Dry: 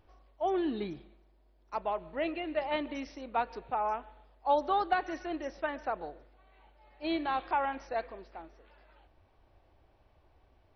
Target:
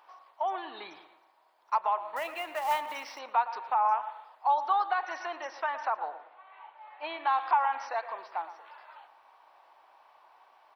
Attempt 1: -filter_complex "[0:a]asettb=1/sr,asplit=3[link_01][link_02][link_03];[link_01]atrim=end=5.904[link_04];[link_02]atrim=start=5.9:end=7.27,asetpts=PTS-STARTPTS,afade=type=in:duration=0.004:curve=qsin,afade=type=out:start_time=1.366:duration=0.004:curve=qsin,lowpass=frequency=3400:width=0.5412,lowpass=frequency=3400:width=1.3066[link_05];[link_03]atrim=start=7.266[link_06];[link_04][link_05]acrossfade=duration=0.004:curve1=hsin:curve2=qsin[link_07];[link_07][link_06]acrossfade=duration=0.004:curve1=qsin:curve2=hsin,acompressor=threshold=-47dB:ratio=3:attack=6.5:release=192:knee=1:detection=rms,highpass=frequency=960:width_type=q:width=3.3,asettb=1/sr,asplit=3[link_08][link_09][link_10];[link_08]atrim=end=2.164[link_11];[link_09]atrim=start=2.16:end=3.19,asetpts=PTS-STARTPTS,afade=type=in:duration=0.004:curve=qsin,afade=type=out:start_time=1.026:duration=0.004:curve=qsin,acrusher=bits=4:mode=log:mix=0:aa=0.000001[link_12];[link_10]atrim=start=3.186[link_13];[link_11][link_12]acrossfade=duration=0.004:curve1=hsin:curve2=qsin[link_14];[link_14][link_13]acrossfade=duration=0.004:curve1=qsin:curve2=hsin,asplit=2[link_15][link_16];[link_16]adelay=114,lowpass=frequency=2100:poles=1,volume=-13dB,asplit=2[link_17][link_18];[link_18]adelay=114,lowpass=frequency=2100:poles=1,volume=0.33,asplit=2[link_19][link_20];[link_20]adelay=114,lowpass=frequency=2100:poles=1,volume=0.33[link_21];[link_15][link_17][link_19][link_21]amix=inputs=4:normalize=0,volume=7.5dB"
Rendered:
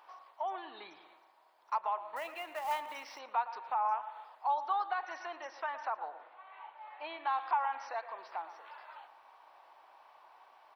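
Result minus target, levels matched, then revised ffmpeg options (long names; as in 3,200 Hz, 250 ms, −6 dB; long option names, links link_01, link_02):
downward compressor: peak gain reduction +6 dB
-filter_complex "[0:a]asettb=1/sr,asplit=3[link_01][link_02][link_03];[link_01]atrim=end=5.904[link_04];[link_02]atrim=start=5.9:end=7.27,asetpts=PTS-STARTPTS,afade=type=in:duration=0.004:curve=qsin,afade=type=out:start_time=1.366:duration=0.004:curve=qsin,lowpass=frequency=3400:width=0.5412,lowpass=frequency=3400:width=1.3066[link_05];[link_03]atrim=start=7.266[link_06];[link_04][link_05]acrossfade=duration=0.004:curve1=hsin:curve2=qsin[link_07];[link_07][link_06]acrossfade=duration=0.004:curve1=qsin:curve2=hsin,acompressor=threshold=-38dB:ratio=3:attack=6.5:release=192:knee=1:detection=rms,highpass=frequency=960:width_type=q:width=3.3,asettb=1/sr,asplit=3[link_08][link_09][link_10];[link_08]atrim=end=2.164[link_11];[link_09]atrim=start=2.16:end=3.19,asetpts=PTS-STARTPTS,afade=type=in:duration=0.004:curve=qsin,afade=type=out:start_time=1.026:duration=0.004:curve=qsin,acrusher=bits=4:mode=log:mix=0:aa=0.000001[link_12];[link_10]atrim=start=3.186[link_13];[link_11][link_12]acrossfade=duration=0.004:curve1=hsin:curve2=qsin[link_14];[link_14][link_13]acrossfade=duration=0.004:curve1=qsin:curve2=hsin,asplit=2[link_15][link_16];[link_16]adelay=114,lowpass=frequency=2100:poles=1,volume=-13dB,asplit=2[link_17][link_18];[link_18]adelay=114,lowpass=frequency=2100:poles=1,volume=0.33,asplit=2[link_19][link_20];[link_20]adelay=114,lowpass=frequency=2100:poles=1,volume=0.33[link_21];[link_15][link_17][link_19][link_21]amix=inputs=4:normalize=0,volume=7.5dB"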